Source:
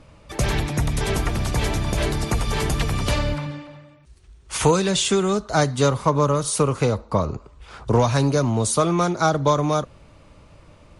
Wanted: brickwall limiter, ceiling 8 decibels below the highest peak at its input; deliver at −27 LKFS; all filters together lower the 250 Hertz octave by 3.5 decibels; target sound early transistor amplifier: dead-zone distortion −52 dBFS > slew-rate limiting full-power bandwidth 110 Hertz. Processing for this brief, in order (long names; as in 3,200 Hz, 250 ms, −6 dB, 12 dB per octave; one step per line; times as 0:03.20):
parametric band 250 Hz −5.5 dB
brickwall limiter −14.5 dBFS
dead-zone distortion −52 dBFS
slew-rate limiting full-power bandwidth 110 Hz
level −1 dB